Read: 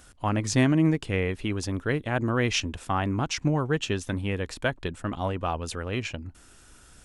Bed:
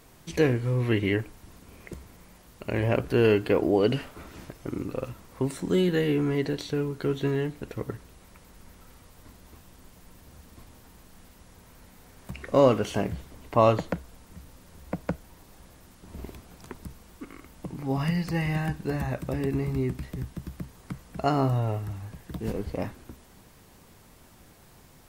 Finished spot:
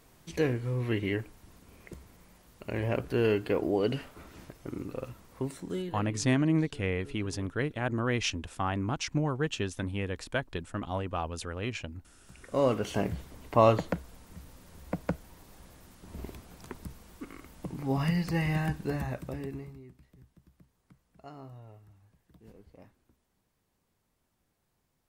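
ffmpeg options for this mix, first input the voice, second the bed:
-filter_complex "[0:a]adelay=5700,volume=-4.5dB[a];[1:a]volume=16dB,afade=t=out:st=5.38:d=0.69:silence=0.133352,afade=t=in:st=12.22:d=0.85:silence=0.0841395,afade=t=out:st=18.74:d=1.06:silence=0.0841395[b];[a][b]amix=inputs=2:normalize=0"

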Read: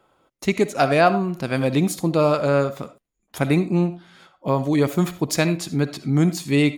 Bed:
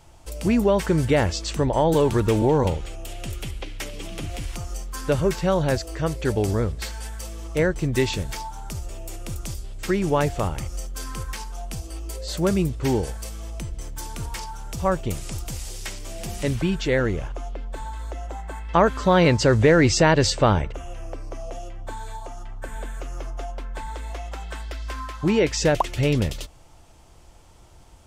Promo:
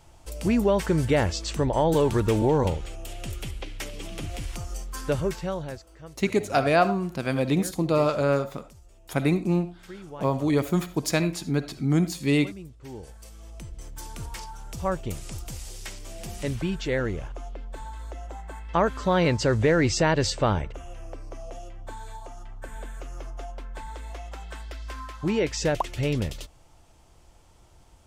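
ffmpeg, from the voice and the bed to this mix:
-filter_complex "[0:a]adelay=5750,volume=-4dB[a];[1:a]volume=12dB,afade=t=out:st=4.97:d=0.86:silence=0.141254,afade=t=in:st=12.88:d=1.21:silence=0.188365[b];[a][b]amix=inputs=2:normalize=0"

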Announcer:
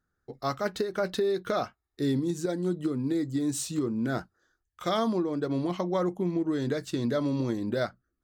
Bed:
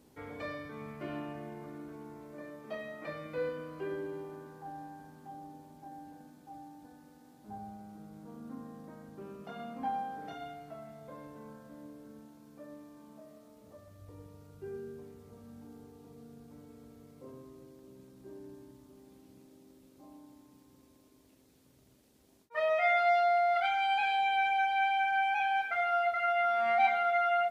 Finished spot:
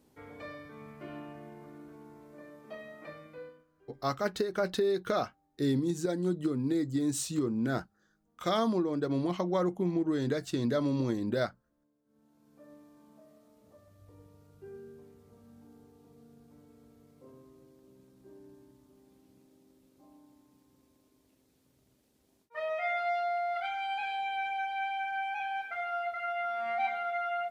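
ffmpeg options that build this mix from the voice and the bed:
-filter_complex "[0:a]adelay=3600,volume=-1.5dB[a];[1:a]volume=17.5dB,afade=t=out:st=3.04:d=0.61:silence=0.0749894,afade=t=in:st=12.05:d=0.65:silence=0.0841395[b];[a][b]amix=inputs=2:normalize=0"

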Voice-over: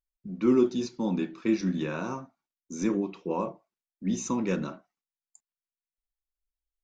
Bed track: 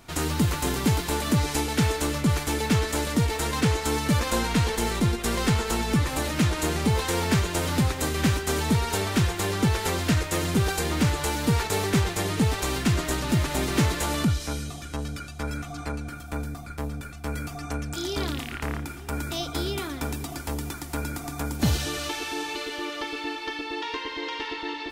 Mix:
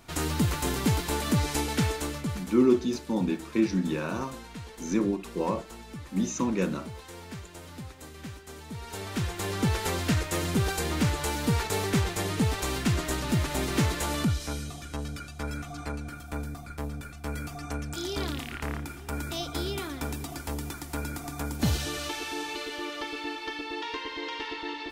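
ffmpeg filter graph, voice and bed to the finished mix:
-filter_complex "[0:a]adelay=2100,volume=1dB[a];[1:a]volume=13dB,afade=t=out:st=1.71:d=0.87:silence=0.158489,afade=t=in:st=8.7:d=1.02:silence=0.16788[b];[a][b]amix=inputs=2:normalize=0"

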